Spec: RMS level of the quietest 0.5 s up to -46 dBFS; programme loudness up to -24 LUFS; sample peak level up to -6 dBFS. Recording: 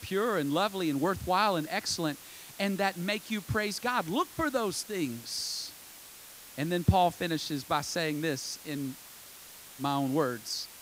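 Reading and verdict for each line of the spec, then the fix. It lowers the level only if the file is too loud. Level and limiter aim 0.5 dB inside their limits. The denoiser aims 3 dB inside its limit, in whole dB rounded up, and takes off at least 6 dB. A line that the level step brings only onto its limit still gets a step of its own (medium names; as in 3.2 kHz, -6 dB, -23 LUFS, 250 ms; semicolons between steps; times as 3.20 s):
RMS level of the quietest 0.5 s -50 dBFS: pass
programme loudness -31.0 LUFS: pass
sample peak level -10.0 dBFS: pass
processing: none needed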